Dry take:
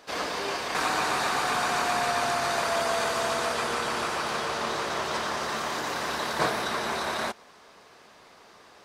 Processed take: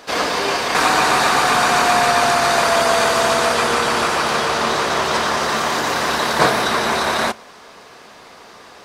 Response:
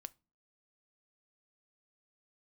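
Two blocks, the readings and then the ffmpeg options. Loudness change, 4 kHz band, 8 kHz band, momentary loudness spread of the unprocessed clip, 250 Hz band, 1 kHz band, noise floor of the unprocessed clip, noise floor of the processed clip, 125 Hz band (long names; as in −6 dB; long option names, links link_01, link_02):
+11.5 dB, +11.5 dB, +11.0 dB, 4 LU, +11.5 dB, +11.5 dB, −54 dBFS, −42 dBFS, +11.0 dB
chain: -filter_complex "[0:a]asplit=2[link_01][link_02];[1:a]atrim=start_sample=2205[link_03];[link_02][link_03]afir=irnorm=-1:irlink=0,volume=14dB[link_04];[link_01][link_04]amix=inputs=2:normalize=0"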